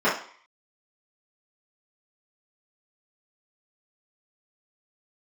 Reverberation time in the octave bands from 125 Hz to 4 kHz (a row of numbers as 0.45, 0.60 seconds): 0.35, 0.40, 0.45, 0.55, 0.50, 0.55 seconds